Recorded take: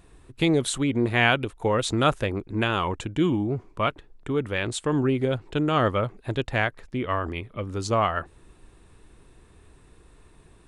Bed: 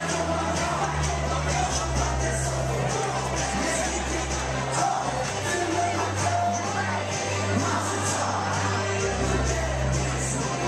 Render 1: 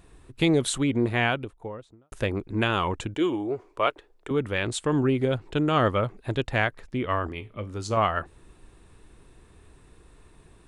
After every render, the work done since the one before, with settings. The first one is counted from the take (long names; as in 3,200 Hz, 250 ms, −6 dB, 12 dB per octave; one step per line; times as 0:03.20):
0:00.81–0:02.12: fade out and dull
0:03.14–0:04.31: low shelf with overshoot 280 Hz −11.5 dB, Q 1.5
0:07.27–0:07.97: tuned comb filter 53 Hz, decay 0.23 s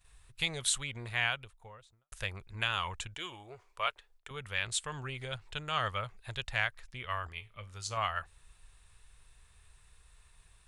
noise gate −55 dBFS, range −12 dB
guitar amp tone stack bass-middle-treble 10-0-10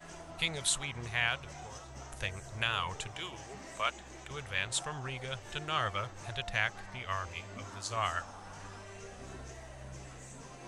mix in bed −22.5 dB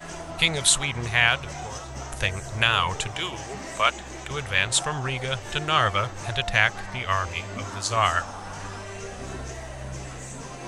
level +11.5 dB